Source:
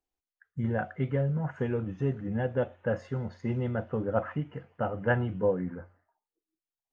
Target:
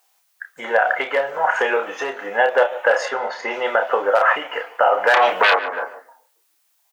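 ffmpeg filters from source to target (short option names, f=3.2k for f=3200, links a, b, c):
-filter_complex "[0:a]crystalizer=i=0.5:c=0,asoftclip=type=hard:threshold=-19dB,asettb=1/sr,asplit=3[a][b][c];[a]atrim=end=3.054[d];[b]atrim=start=3.05:end=3.51,asetpts=PTS-STARTPTS,afade=t=in:d=0.004:c=qsin,afade=t=out:st=0.456:d=0.004:c=qsin,lowpass=f=2.6k:p=1[e];[c]atrim=start=3.506[f];[d][e]acrossfade=d=0.004:c1=hsin:c2=qsin[g];[g][f]acrossfade=d=0.004:c1=qsin:c2=hsin,asettb=1/sr,asplit=3[h][i][j];[h]atrim=end=5.144[k];[i]atrim=start=5.14:end=5.56,asetpts=PTS-STARTPTS,afade=t=in:d=0.004:c=qsin,afade=t=out:st=0.416:d=0.004:c=qsin,aeval=exprs='0.237*sin(PI/2*7.08*val(0)/0.237)':c=same[l];[j]atrim=start=5.556[m];[k][l]acrossfade=d=0.004:c1=hsin:c2=qsin[n];[n][m]acrossfade=d=0.004:c1=qsin:c2=hsin,asplit=2[o][p];[p]adelay=30,volume=-7dB[q];[o][q]amix=inputs=2:normalize=0,asplit=2[r][s];[s]adelay=144,lowpass=f=1k:p=1,volume=-20dB,asplit=2[t][u];[u]adelay=144,lowpass=f=1k:p=1,volume=0.37,asplit=2[v][w];[w]adelay=144,lowpass=f=1k:p=1,volume=0.37[x];[r][t][v][x]amix=inputs=4:normalize=0,acompressor=threshold=-28dB:ratio=12,highpass=f=650:w=0.5412,highpass=f=650:w=1.3066,alimiter=level_in=30.5dB:limit=-1dB:release=50:level=0:latency=1,volume=-4dB"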